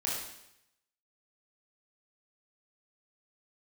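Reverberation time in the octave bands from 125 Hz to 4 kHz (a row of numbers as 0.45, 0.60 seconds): 0.85, 0.80, 0.80, 0.80, 0.85, 0.80 seconds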